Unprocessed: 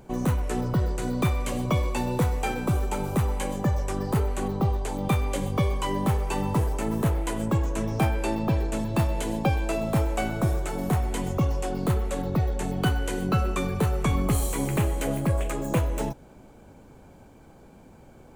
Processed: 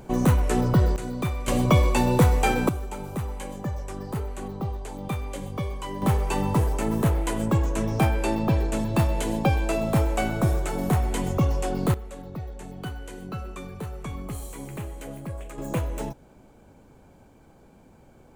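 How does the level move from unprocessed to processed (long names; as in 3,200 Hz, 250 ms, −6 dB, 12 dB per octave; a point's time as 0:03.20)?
+5 dB
from 0:00.96 −3.5 dB
from 0:01.48 +6 dB
from 0:02.69 −6 dB
from 0:06.02 +2 dB
from 0:11.94 −10.5 dB
from 0:15.58 −3 dB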